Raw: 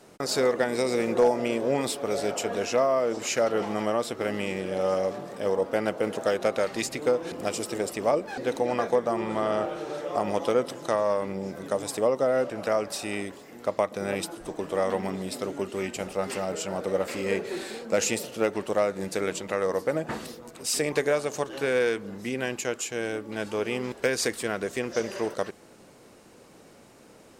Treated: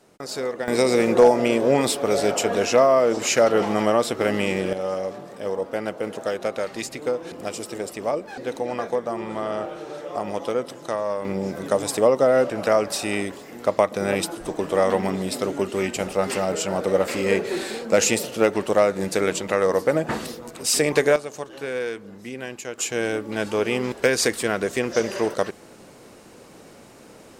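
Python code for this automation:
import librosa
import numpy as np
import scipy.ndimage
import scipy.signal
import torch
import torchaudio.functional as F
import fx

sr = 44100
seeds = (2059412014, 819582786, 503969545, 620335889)

y = fx.gain(x, sr, db=fx.steps((0.0, -4.0), (0.68, 7.0), (4.73, -1.0), (11.25, 6.5), (21.16, -3.5), (22.78, 6.0)))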